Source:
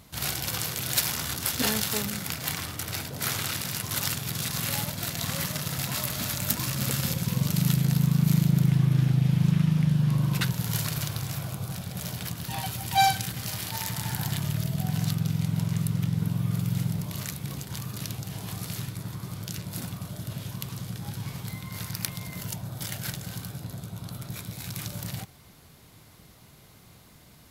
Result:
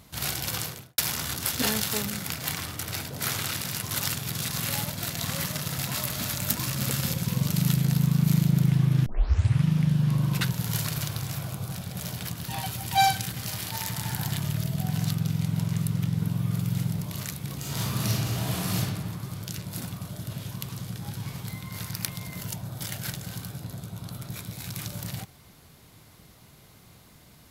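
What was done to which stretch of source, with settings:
0.57–0.98 s: studio fade out
9.06 s: tape start 0.59 s
17.58–18.77 s: reverb throw, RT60 1.5 s, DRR -8 dB

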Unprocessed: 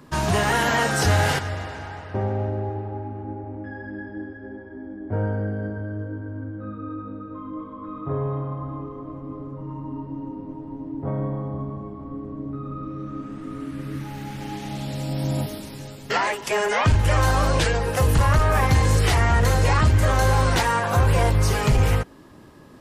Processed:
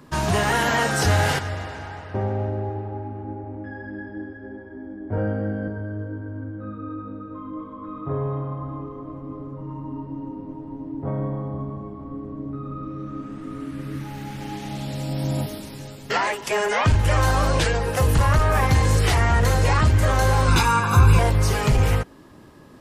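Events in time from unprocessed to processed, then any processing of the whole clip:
5.15–5.68 s: doubling 23 ms -2.5 dB
20.48–21.19 s: comb 0.8 ms, depth 85%

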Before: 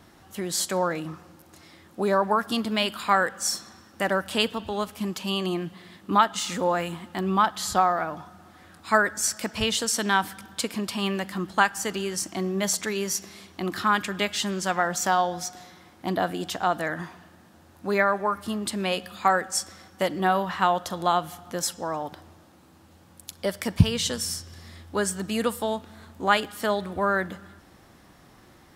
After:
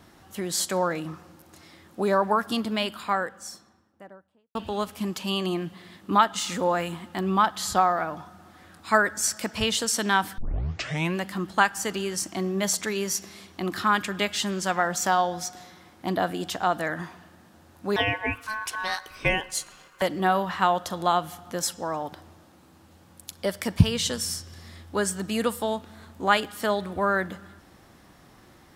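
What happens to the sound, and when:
2.27–4.55 s: studio fade out
10.38 s: tape start 0.79 s
17.96–20.02 s: ring modulator 1.3 kHz

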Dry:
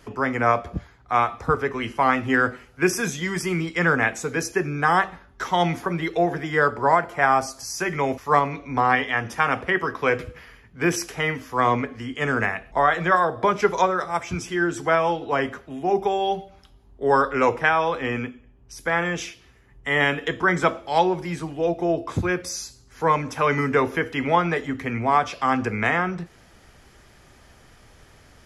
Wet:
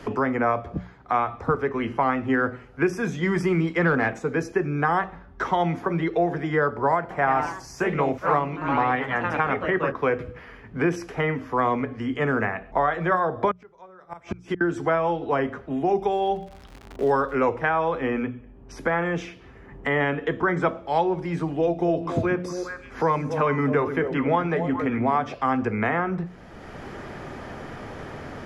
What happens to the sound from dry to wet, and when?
3.23–4.19 s: waveshaping leveller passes 1
7.00–10.16 s: ever faster or slower copies 104 ms, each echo +2 st, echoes 3, each echo -6 dB
13.51–14.61 s: inverted gate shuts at -19 dBFS, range -32 dB
16.10–17.34 s: crackle 150 per s -32 dBFS
21.48–25.34 s: repeats whose band climbs or falls 136 ms, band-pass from 200 Hz, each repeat 1.4 oct, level -4.5 dB
whole clip: low-pass 1.1 kHz 6 dB/octave; hum notches 60/120/180 Hz; three bands compressed up and down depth 70%

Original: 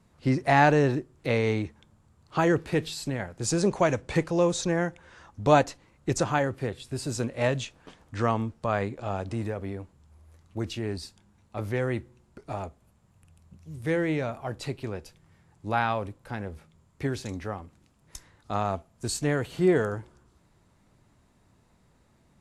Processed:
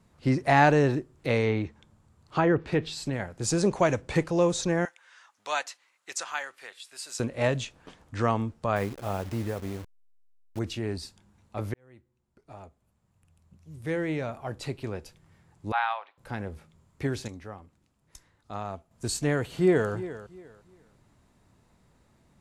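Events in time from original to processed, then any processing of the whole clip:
1.42–3.13 s: low-pass that closes with the level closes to 2.1 kHz, closed at -19 dBFS
4.85–7.20 s: high-pass 1.4 kHz
8.76–10.59 s: send-on-delta sampling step -39.5 dBFS
11.74–14.98 s: fade in
15.72–16.18 s: Chebyshev band-pass 780–3800 Hz, order 3
17.28–18.91 s: gain -7.5 dB
19.43–19.91 s: echo throw 350 ms, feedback 25%, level -14.5 dB

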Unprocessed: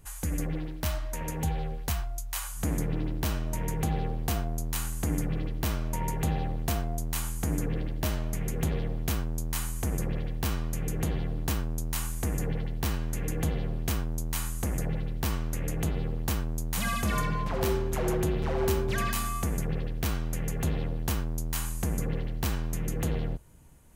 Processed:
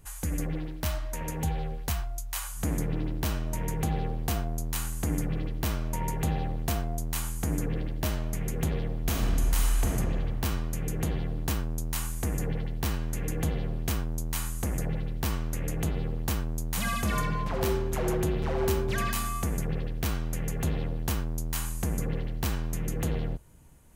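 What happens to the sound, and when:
9.02–9.88 s: reverb throw, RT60 2.3 s, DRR -1.5 dB

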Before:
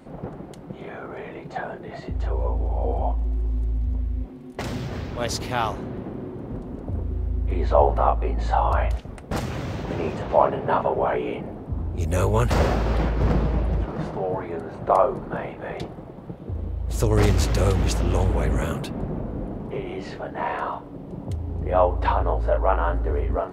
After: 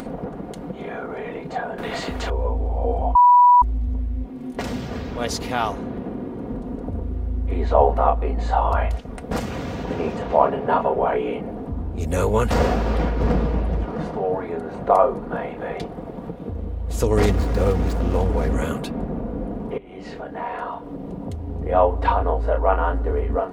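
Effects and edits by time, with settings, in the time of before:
1.78–2.30 s: spectrum-flattening compressor 2:1
3.15–3.62 s: bleep 980 Hz -12 dBFS
17.30–18.54 s: median filter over 15 samples
19.78–21.66 s: fade in, from -16 dB
whole clip: peaking EQ 450 Hz +2.5 dB 1.9 oct; upward compressor, threshold -25 dBFS; comb 4.2 ms, depth 41%

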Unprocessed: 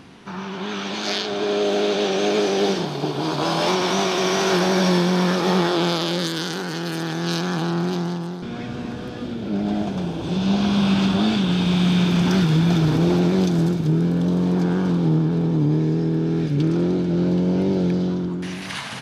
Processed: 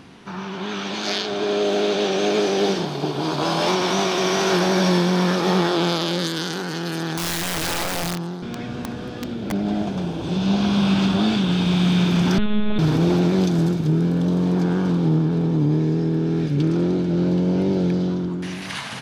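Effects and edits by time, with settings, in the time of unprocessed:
7.17–9.52 s: integer overflow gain 20 dB
12.38–12.79 s: monotone LPC vocoder at 8 kHz 210 Hz

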